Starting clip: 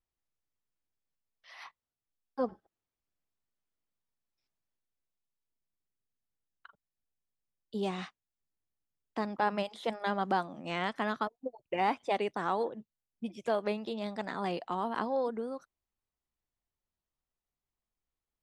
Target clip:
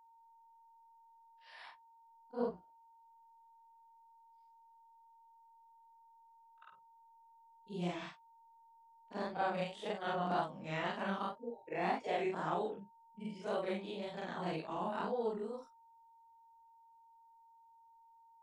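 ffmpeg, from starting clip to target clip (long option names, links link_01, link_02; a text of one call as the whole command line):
ffmpeg -i in.wav -af "afftfilt=real='re':imag='-im':win_size=4096:overlap=0.75,highshelf=frequency=3100:gain=2.5,flanger=delay=15.5:depth=6.6:speed=1.9,aeval=exprs='val(0)+0.000631*sin(2*PI*1000*n/s)':channel_layout=same,asetrate=40440,aresample=44100,atempo=1.09051,volume=2.5dB" out.wav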